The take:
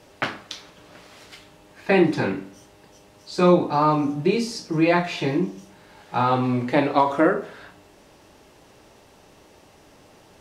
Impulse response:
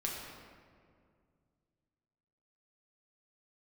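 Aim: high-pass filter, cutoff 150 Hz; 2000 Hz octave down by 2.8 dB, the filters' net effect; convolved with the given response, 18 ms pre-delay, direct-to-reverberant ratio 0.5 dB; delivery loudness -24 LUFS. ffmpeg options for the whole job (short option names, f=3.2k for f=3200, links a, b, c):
-filter_complex "[0:a]highpass=150,equalizer=f=2k:t=o:g=-3.5,asplit=2[a][b];[1:a]atrim=start_sample=2205,adelay=18[c];[b][c]afir=irnorm=-1:irlink=0,volume=-3.5dB[d];[a][d]amix=inputs=2:normalize=0,volume=-4dB"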